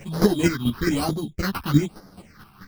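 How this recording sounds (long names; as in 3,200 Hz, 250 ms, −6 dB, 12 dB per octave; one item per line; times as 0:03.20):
aliases and images of a low sample rate 3,500 Hz, jitter 0%
phaser sweep stages 6, 1.1 Hz, lowest notch 500–2,500 Hz
chopped level 4.6 Hz, depth 65%, duty 15%
a shimmering, thickened sound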